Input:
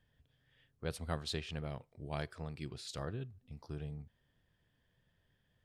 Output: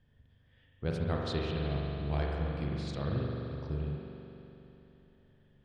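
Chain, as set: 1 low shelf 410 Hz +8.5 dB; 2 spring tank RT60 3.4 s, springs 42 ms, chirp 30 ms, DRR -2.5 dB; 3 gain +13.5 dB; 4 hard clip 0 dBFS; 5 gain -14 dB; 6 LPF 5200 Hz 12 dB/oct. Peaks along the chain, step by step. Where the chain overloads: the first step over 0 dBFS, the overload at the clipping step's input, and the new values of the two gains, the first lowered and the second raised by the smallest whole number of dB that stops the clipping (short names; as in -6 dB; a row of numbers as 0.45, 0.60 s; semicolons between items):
-19.5, -19.0, -5.5, -5.5, -19.5, -19.5 dBFS; no overload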